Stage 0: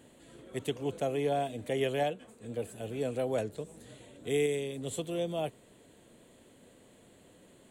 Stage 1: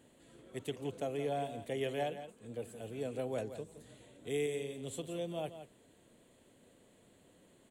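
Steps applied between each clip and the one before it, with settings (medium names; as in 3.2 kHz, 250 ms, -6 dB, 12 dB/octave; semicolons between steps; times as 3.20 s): delay 170 ms -11 dB; trim -6 dB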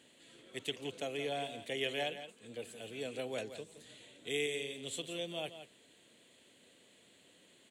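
frequency weighting D; trim -2 dB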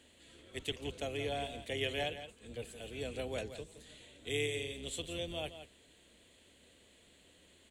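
octave divider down 2 oct, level -1 dB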